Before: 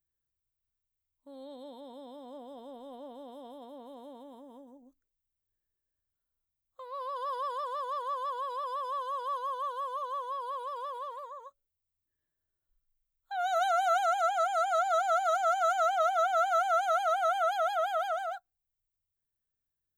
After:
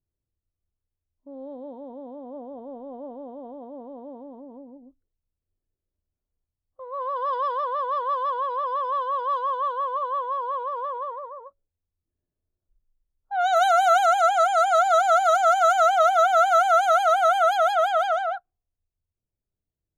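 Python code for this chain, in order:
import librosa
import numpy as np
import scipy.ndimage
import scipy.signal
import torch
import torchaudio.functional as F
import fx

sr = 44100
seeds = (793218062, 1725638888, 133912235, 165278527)

y = fx.env_lowpass(x, sr, base_hz=510.0, full_db=-25.0)
y = y * librosa.db_to_amplitude(9.0)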